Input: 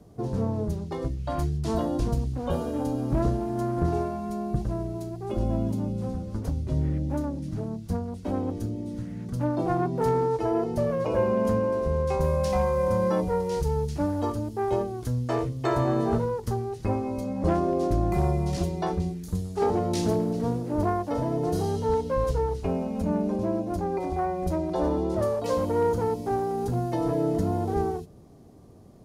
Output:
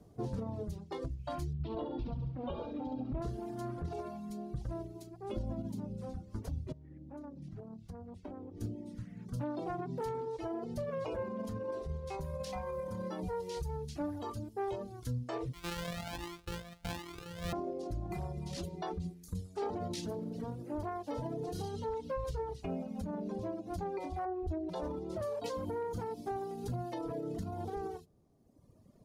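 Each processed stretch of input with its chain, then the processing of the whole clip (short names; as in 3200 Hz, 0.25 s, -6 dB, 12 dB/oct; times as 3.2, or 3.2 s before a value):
1.53–3.22 LPF 3500 Hz 24 dB/oct + dynamic EQ 1700 Hz, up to -7 dB, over -53 dBFS, Q 1.8 + flutter echo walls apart 11.9 m, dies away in 0.96 s
6.72–8.61 LPF 3200 Hz 6 dB/oct + compressor 10:1, threshold -32 dBFS
15.53–17.53 sample sorter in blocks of 256 samples + cascading flanger rising 1.3 Hz
24.25–24.69 LPF 1100 Hz 6 dB/oct + comb 2.7 ms, depth 94%
whole clip: dynamic EQ 3600 Hz, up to +5 dB, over -52 dBFS, Q 1.2; limiter -21 dBFS; reverb removal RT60 1.8 s; gain -6.5 dB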